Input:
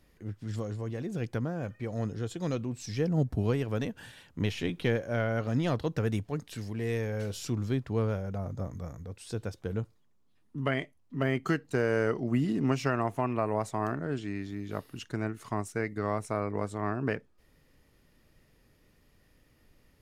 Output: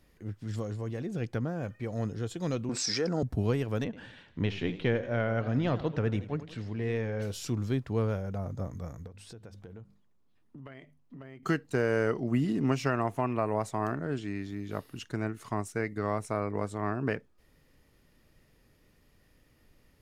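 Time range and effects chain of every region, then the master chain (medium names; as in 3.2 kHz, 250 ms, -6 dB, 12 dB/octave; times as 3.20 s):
0.99–1.48 s: treble shelf 9.3 kHz -7.5 dB + band-stop 1 kHz, Q 17
2.69–3.23 s: cabinet simulation 310–8900 Hz, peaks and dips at 1.4 kHz +8 dB, 2.9 kHz -7 dB, 5 kHz +8 dB + level flattener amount 70%
3.84–7.22 s: low-pass 3.7 kHz + modulated delay 86 ms, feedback 51%, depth 119 cents, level -14.5 dB
9.07–11.43 s: treble shelf 4.6 kHz -7 dB + hum notches 50/100/150/200/250 Hz + compression, threshold -44 dBFS
whole clip: none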